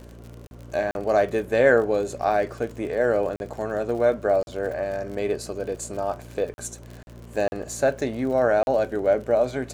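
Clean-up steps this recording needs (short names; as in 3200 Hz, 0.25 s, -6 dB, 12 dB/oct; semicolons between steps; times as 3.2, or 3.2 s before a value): de-click; de-hum 58.4 Hz, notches 7; interpolate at 0.47/0.91/3.36/4.43/6.54/7.03/7.48/8.63, 41 ms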